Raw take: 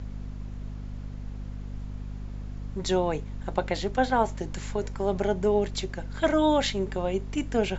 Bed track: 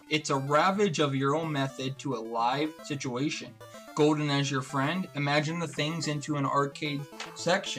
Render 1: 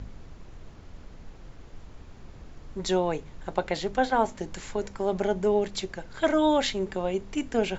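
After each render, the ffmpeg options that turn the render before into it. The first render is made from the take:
ffmpeg -i in.wav -af "bandreject=frequency=50:width_type=h:width=4,bandreject=frequency=100:width_type=h:width=4,bandreject=frequency=150:width_type=h:width=4,bandreject=frequency=200:width_type=h:width=4,bandreject=frequency=250:width_type=h:width=4" out.wav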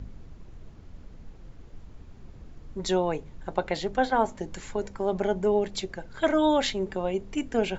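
ffmpeg -i in.wav -af "afftdn=noise_reduction=6:noise_floor=-47" out.wav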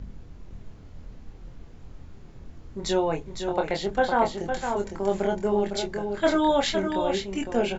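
ffmpeg -i in.wav -filter_complex "[0:a]asplit=2[link_01][link_02];[link_02]adelay=25,volume=-4dB[link_03];[link_01][link_03]amix=inputs=2:normalize=0,aecho=1:1:508:0.473" out.wav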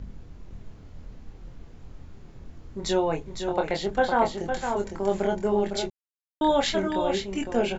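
ffmpeg -i in.wav -filter_complex "[0:a]asplit=3[link_01][link_02][link_03];[link_01]atrim=end=5.9,asetpts=PTS-STARTPTS,afade=type=out:start_time=5.896:duration=0.004:curve=hsin[link_04];[link_02]atrim=start=5.9:end=6.41,asetpts=PTS-STARTPTS,volume=0[link_05];[link_03]atrim=start=6.41,asetpts=PTS-STARTPTS,afade=type=in:duration=0.004:curve=hsin[link_06];[link_04][link_05][link_06]concat=n=3:v=0:a=1" out.wav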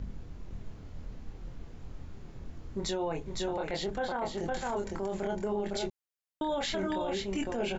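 ffmpeg -i in.wav -af "acompressor=threshold=-28dB:ratio=2,alimiter=level_in=0.5dB:limit=-24dB:level=0:latency=1:release=15,volume=-0.5dB" out.wav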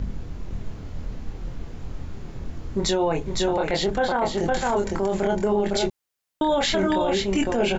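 ffmpeg -i in.wav -af "volume=10.5dB" out.wav

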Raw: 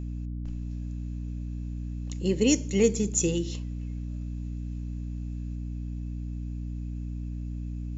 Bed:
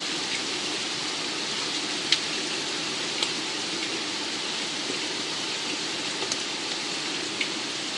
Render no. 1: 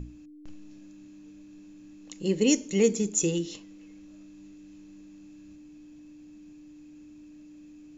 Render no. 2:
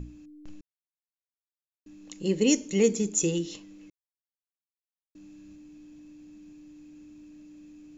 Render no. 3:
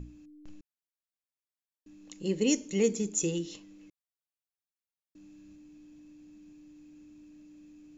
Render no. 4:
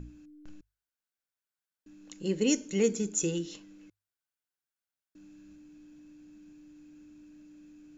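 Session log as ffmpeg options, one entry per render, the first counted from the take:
ffmpeg -i in.wav -af "bandreject=frequency=60:width_type=h:width=6,bandreject=frequency=120:width_type=h:width=6,bandreject=frequency=180:width_type=h:width=6,bandreject=frequency=240:width_type=h:width=6" out.wav
ffmpeg -i in.wav -filter_complex "[0:a]asplit=5[link_01][link_02][link_03][link_04][link_05];[link_01]atrim=end=0.61,asetpts=PTS-STARTPTS,afade=type=out:start_time=0.606:duration=0.004:curve=hsin[link_06];[link_02]atrim=start=0.61:end=1.86,asetpts=PTS-STARTPTS,volume=0[link_07];[link_03]atrim=start=1.86:end=3.9,asetpts=PTS-STARTPTS,afade=type=in:duration=0.004:curve=hsin,afade=type=out:start_time=2.036:duration=0.004:curve=hsin[link_08];[link_04]atrim=start=3.9:end=5.15,asetpts=PTS-STARTPTS,volume=0[link_09];[link_05]atrim=start=5.15,asetpts=PTS-STARTPTS,afade=type=in:duration=0.004:curve=hsin[link_10];[link_06][link_07][link_08][link_09][link_10]concat=n=5:v=0:a=1" out.wav
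ffmpeg -i in.wav -af "volume=-4dB" out.wav
ffmpeg -i in.wav -af "equalizer=frequency=1500:width=6.3:gain=10,bandreject=frequency=50:width_type=h:width=6,bandreject=frequency=100:width_type=h:width=6" out.wav

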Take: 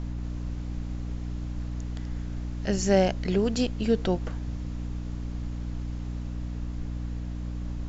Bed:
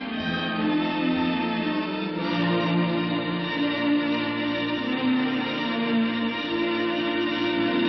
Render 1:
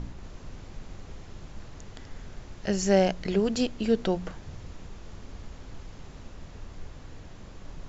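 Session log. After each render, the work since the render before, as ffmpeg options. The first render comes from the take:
ffmpeg -i in.wav -af "bandreject=frequency=60:width_type=h:width=4,bandreject=frequency=120:width_type=h:width=4,bandreject=frequency=180:width_type=h:width=4,bandreject=frequency=240:width_type=h:width=4,bandreject=frequency=300:width_type=h:width=4" out.wav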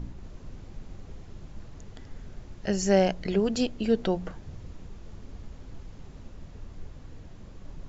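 ffmpeg -i in.wav -af "afftdn=noise_reduction=6:noise_floor=-46" out.wav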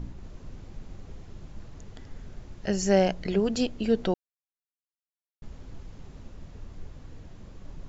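ffmpeg -i in.wav -filter_complex "[0:a]asplit=3[link_01][link_02][link_03];[link_01]atrim=end=4.14,asetpts=PTS-STARTPTS,afade=type=out:start_time=4.136:duration=0.004:curve=hsin[link_04];[link_02]atrim=start=4.14:end=5.42,asetpts=PTS-STARTPTS,volume=0[link_05];[link_03]atrim=start=5.42,asetpts=PTS-STARTPTS,afade=type=in:duration=0.004:curve=hsin[link_06];[link_04][link_05][link_06]concat=n=3:v=0:a=1" out.wav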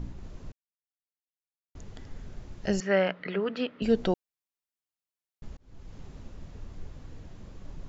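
ffmpeg -i in.wav -filter_complex "[0:a]asettb=1/sr,asplit=3[link_01][link_02][link_03];[link_01]atrim=end=2.804[link_04];[link_02]atrim=start=2.8:end=3.82,asetpts=PTS-STARTPTS,afade=type=in:duration=0.004:curve=qsin,afade=type=out:start_time=1.016:duration=0.004:curve=qsin,highpass=frequency=190:width=0.5412,highpass=frequency=190:width=1.3066,equalizer=frequency=220:width_type=q:width=4:gain=-8,equalizer=frequency=350:width_type=q:width=4:gain=-8,equalizer=frequency=740:width_type=q:width=4:gain=-7,equalizer=frequency=1300:width_type=q:width=4:gain=9,equalizer=frequency=1900:width_type=q:width=4:gain=6,lowpass=frequency=3300:width=0.5412,lowpass=frequency=3300:width=1.3066[link_05];[link_03]atrim=start=3.816[link_06];[link_04][link_05]acrossfade=duration=0.004:curve1=hsin:curve2=qsin[link_07];[link_07][link_06]acrossfade=duration=0.004:curve1=qsin:curve2=hsin,asplit=4[link_08][link_09][link_10][link_11];[link_08]atrim=end=0.52,asetpts=PTS-STARTPTS,afade=type=out:start_time=0.516:duration=0.004:curve=hsin[link_12];[link_09]atrim=start=0.52:end=1.75,asetpts=PTS-STARTPTS,volume=0[link_13];[link_10]atrim=start=1.75:end=5.57,asetpts=PTS-STARTPTS,afade=type=in:duration=0.004:curve=hsin,afade=type=out:start_time=3.816:duration=0.004:curve=hsin[link_14];[link_11]atrim=start=5.57,asetpts=PTS-STARTPTS,afade=type=in:duration=0.4[link_15];[link_12][link_13][link_14][link_15]concat=n=4:v=0:a=1" out.wav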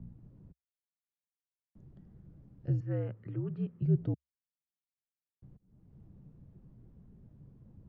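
ffmpeg -i in.wav -af "bandpass=frequency=220:width_type=q:width=2.4:csg=0,afreqshift=-70" out.wav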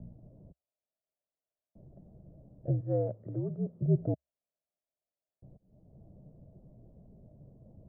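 ffmpeg -i in.wav -af "lowpass=frequency=630:width_type=q:width=6.8" out.wav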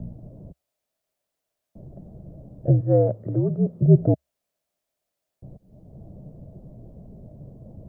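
ffmpeg -i in.wav -af "volume=12dB" out.wav

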